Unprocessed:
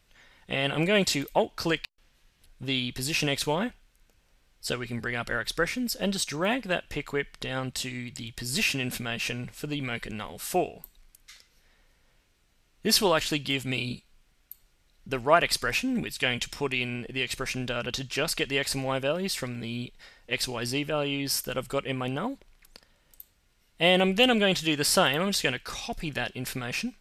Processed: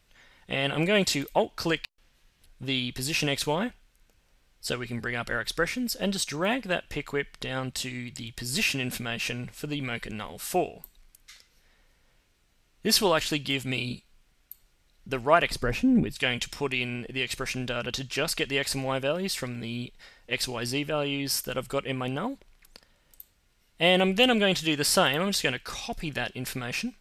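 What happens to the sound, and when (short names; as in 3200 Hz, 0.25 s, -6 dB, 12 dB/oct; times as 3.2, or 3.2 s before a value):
15.5–16.16 tilt shelf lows +8.5 dB, about 890 Hz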